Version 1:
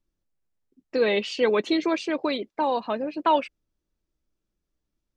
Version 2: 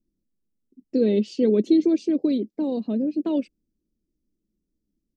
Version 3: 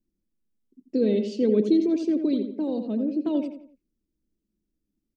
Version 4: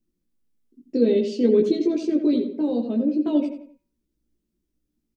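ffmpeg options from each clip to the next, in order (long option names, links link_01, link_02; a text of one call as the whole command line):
ffmpeg -i in.wav -af "firequalizer=gain_entry='entry(140,0);entry(210,12);entry(940,-23);entry(4900,-5)':delay=0.05:min_phase=1" out.wav
ffmpeg -i in.wav -filter_complex "[0:a]asplit=2[link_01][link_02];[link_02]adelay=86,lowpass=frequency=2800:poles=1,volume=-7.5dB,asplit=2[link_03][link_04];[link_04]adelay=86,lowpass=frequency=2800:poles=1,volume=0.39,asplit=2[link_05][link_06];[link_06]adelay=86,lowpass=frequency=2800:poles=1,volume=0.39,asplit=2[link_07][link_08];[link_08]adelay=86,lowpass=frequency=2800:poles=1,volume=0.39[link_09];[link_01][link_03][link_05][link_07][link_09]amix=inputs=5:normalize=0,volume=-2.5dB" out.wav
ffmpeg -i in.wav -filter_complex "[0:a]asplit=2[link_01][link_02];[link_02]adelay=17,volume=-2dB[link_03];[link_01][link_03]amix=inputs=2:normalize=0,bandreject=frequency=190.6:width_type=h:width=4,bandreject=frequency=381.2:width_type=h:width=4,bandreject=frequency=571.8:width_type=h:width=4,bandreject=frequency=762.4:width_type=h:width=4,bandreject=frequency=953:width_type=h:width=4,bandreject=frequency=1143.6:width_type=h:width=4,bandreject=frequency=1334.2:width_type=h:width=4,bandreject=frequency=1524.8:width_type=h:width=4,bandreject=frequency=1715.4:width_type=h:width=4,bandreject=frequency=1906:width_type=h:width=4,bandreject=frequency=2096.6:width_type=h:width=4,bandreject=frequency=2287.2:width_type=h:width=4,bandreject=frequency=2477.8:width_type=h:width=4,volume=1.5dB" out.wav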